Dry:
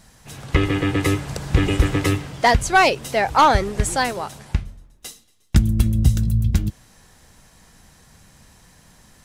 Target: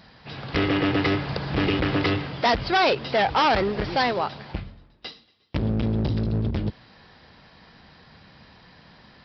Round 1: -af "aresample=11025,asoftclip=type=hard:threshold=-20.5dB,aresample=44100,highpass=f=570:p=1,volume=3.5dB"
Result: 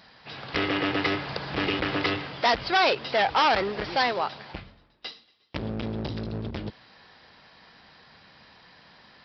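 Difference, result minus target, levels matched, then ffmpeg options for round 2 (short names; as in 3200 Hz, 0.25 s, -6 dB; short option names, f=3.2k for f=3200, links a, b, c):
125 Hz band -7.0 dB
-af "aresample=11025,asoftclip=type=hard:threshold=-20.5dB,aresample=44100,highpass=f=150:p=1,volume=3.5dB"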